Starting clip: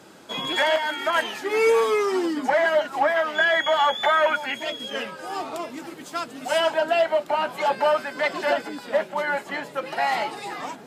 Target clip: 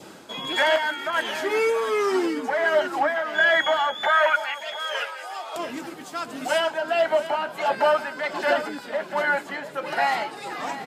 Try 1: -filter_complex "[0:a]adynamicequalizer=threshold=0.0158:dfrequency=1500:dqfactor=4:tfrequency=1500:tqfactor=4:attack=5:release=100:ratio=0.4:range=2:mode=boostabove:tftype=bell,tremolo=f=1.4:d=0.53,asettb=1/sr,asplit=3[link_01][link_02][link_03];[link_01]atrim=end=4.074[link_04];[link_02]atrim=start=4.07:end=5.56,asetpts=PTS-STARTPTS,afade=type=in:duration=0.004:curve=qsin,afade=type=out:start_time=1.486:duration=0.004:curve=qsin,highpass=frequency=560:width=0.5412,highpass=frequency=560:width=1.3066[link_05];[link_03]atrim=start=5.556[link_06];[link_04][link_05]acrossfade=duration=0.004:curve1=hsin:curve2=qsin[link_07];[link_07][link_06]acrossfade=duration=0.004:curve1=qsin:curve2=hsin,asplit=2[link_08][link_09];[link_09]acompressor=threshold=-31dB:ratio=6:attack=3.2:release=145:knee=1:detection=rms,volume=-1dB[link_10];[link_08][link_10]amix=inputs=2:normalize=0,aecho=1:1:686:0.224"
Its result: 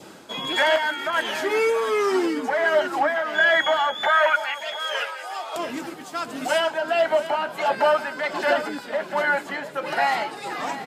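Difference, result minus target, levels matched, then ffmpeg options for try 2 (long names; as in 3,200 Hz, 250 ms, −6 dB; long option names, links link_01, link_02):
downward compressor: peak gain reduction −7 dB
-filter_complex "[0:a]adynamicequalizer=threshold=0.0158:dfrequency=1500:dqfactor=4:tfrequency=1500:tqfactor=4:attack=5:release=100:ratio=0.4:range=2:mode=boostabove:tftype=bell,tremolo=f=1.4:d=0.53,asettb=1/sr,asplit=3[link_01][link_02][link_03];[link_01]atrim=end=4.074[link_04];[link_02]atrim=start=4.07:end=5.56,asetpts=PTS-STARTPTS,afade=type=in:duration=0.004:curve=qsin,afade=type=out:start_time=1.486:duration=0.004:curve=qsin,highpass=frequency=560:width=0.5412,highpass=frequency=560:width=1.3066[link_05];[link_03]atrim=start=5.556[link_06];[link_04][link_05]acrossfade=duration=0.004:curve1=hsin:curve2=qsin[link_07];[link_07][link_06]acrossfade=duration=0.004:curve1=qsin:curve2=hsin,asplit=2[link_08][link_09];[link_09]acompressor=threshold=-39.5dB:ratio=6:attack=3.2:release=145:knee=1:detection=rms,volume=-1dB[link_10];[link_08][link_10]amix=inputs=2:normalize=0,aecho=1:1:686:0.224"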